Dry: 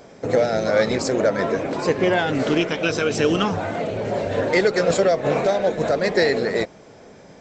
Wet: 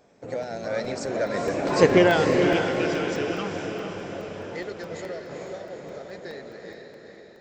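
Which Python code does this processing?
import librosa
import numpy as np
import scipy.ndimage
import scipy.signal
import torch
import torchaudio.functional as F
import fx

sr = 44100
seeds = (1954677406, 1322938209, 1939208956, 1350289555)

y = fx.doppler_pass(x, sr, speed_mps=12, closest_m=2.0, pass_at_s=1.89)
y = fx.rider(y, sr, range_db=4, speed_s=2.0)
y = fx.echo_diffused(y, sr, ms=457, feedback_pct=53, wet_db=-4.5)
y = fx.buffer_crackle(y, sr, first_s=0.43, period_s=0.21, block=64, kind='zero')
y = y * 10.0 ** (3.0 / 20.0)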